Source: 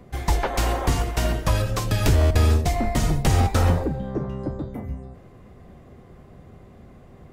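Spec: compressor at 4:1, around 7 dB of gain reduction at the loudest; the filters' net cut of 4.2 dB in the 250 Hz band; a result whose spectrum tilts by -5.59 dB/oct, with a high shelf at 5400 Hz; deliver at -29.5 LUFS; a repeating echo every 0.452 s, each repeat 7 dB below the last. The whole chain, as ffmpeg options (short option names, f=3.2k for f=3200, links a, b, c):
-af "equalizer=f=250:t=o:g=-6,highshelf=f=5.4k:g=-3,acompressor=threshold=-23dB:ratio=4,aecho=1:1:452|904|1356|1808|2260:0.447|0.201|0.0905|0.0407|0.0183,volume=-1.5dB"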